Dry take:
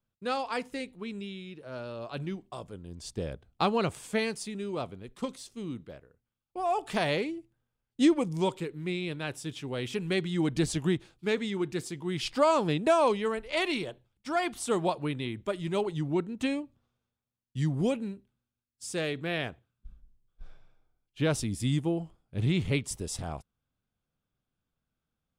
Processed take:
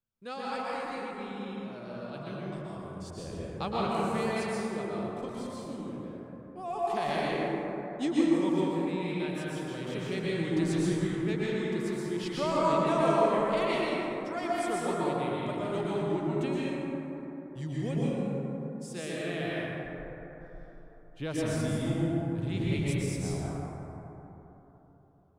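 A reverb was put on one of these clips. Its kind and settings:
dense smooth reverb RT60 3.7 s, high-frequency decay 0.3×, pre-delay 105 ms, DRR −7.5 dB
level −9 dB

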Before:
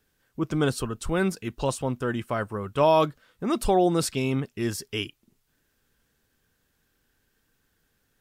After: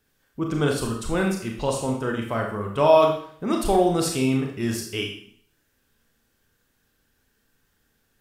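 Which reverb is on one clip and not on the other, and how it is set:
four-comb reverb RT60 0.57 s, combs from 27 ms, DRR 1 dB

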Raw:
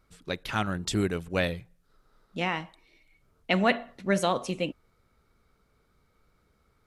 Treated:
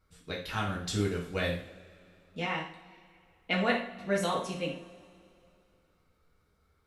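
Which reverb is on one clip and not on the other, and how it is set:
coupled-rooms reverb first 0.45 s, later 2.6 s, from −21 dB, DRR −3 dB
level −8 dB

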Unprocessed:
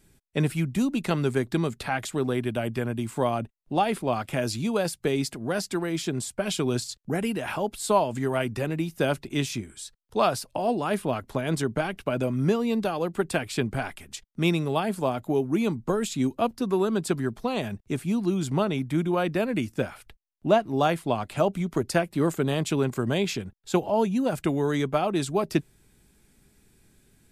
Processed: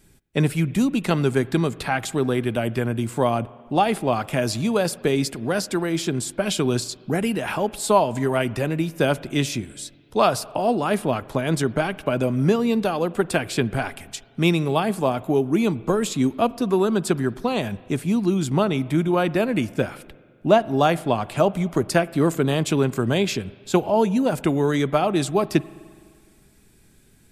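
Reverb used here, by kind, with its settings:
spring reverb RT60 1.9 s, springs 42/51 ms, chirp 75 ms, DRR 19 dB
level +4.5 dB

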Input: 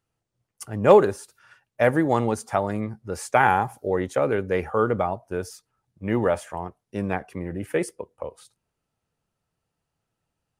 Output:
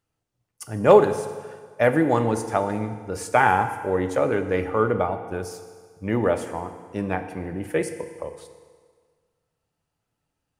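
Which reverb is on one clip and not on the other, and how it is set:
feedback delay network reverb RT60 1.7 s, low-frequency decay 0.9×, high-frequency decay 0.9×, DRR 7.5 dB

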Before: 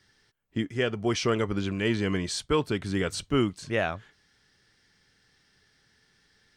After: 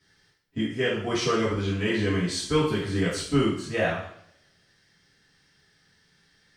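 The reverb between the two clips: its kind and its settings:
coupled-rooms reverb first 0.6 s, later 1.6 s, from −28 dB, DRR −8.5 dB
level −7 dB

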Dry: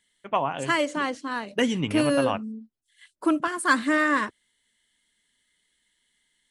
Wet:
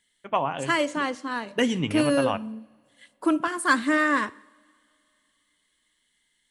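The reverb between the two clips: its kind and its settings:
coupled-rooms reverb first 0.7 s, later 3 s, from −20 dB, DRR 17.5 dB

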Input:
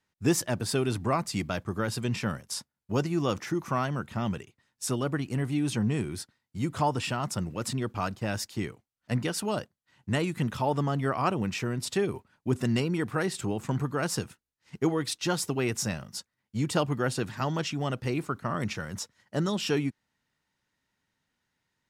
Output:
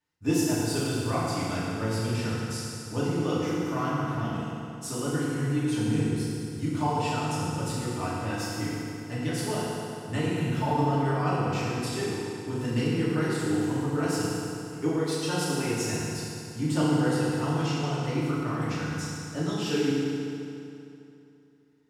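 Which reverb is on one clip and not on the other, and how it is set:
feedback delay network reverb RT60 2.8 s, high-frequency decay 0.8×, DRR −9.5 dB
level −9.5 dB

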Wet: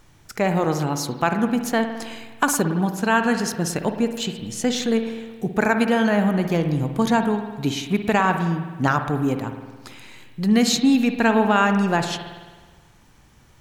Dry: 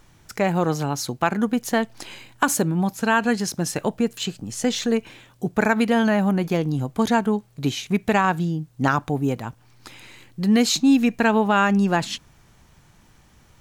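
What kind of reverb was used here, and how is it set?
spring reverb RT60 1.4 s, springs 53 ms, chirp 25 ms, DRR 7 dB

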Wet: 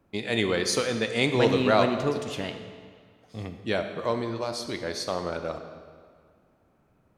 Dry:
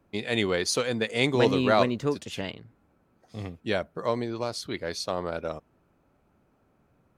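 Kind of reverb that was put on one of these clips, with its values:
comb and all-pass reverb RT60 1.9 s, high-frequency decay 0.85×, pre-delay 0 ms, DRR 7 dB

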